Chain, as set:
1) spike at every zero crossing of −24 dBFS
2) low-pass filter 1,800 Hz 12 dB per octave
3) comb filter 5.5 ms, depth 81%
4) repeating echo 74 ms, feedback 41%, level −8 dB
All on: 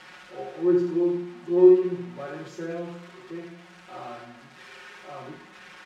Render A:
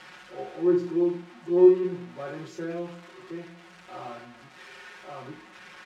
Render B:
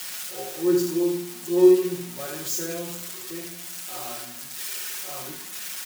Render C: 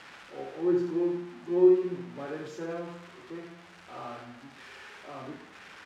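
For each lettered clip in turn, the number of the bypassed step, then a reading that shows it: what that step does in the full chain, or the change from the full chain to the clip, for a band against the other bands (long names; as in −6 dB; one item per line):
4, echo-to-direct ratio −7.0 dB to none audible
2, 2 kHz band +3.5 dB
3, 2 kHz band +2.5 dB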